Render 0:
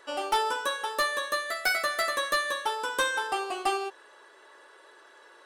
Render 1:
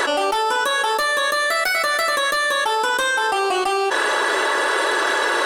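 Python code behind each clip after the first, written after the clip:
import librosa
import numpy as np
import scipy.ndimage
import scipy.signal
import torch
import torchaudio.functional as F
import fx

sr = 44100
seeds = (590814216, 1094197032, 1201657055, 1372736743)

y = fx.env_flatten(x, sr, amount_pct=100)
y = y * librosa.db_to_amplitude(2.0)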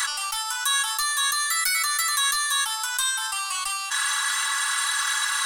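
y = scipy.signal.sosfilt(scipy.signal.ellip(3, 1.0, 80, [110.0, 1100.0], 'bandstop', fs=sr, output='sos'), x)
y = fx.bass_treble(y, sr, bass_db=1, treble_db=14)
y = y + 0.42 * np.pad(y, (int(3.6 * sr / 1000.0), 0))[:len(y)]
y = y * librosa.db_to_amplitude(-7.5)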